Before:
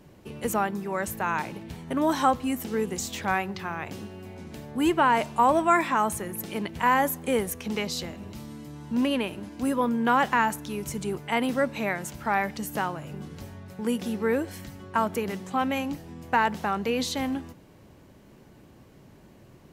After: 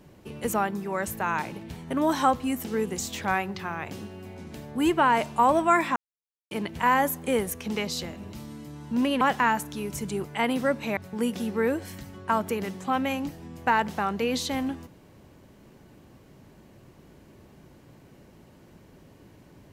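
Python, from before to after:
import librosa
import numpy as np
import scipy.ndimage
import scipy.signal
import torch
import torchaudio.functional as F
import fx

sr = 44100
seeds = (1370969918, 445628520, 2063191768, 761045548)

y = fx.edit(x, sr, fx.silence(start_s=5.96, length_s=0.55),
    fx.cut(start_s=9.21, length_s=0.93),
    fx.cut(start_s=11.9, length_s=1.73), tone=tone)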